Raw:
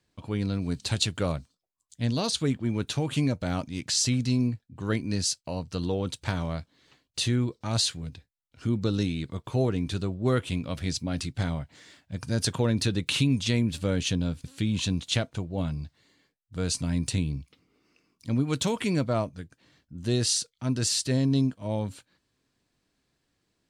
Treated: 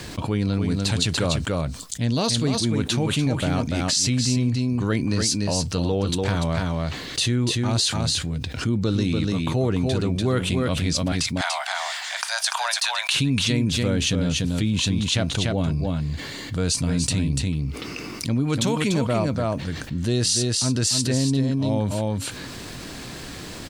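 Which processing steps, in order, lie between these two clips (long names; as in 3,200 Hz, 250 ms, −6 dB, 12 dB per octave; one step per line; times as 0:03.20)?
0:11.12–0:13.14: Butterworth high-pass 680 Hz 72 dB per octave
single-tap delay 291 ms −6 dB
envelope flattener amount 70%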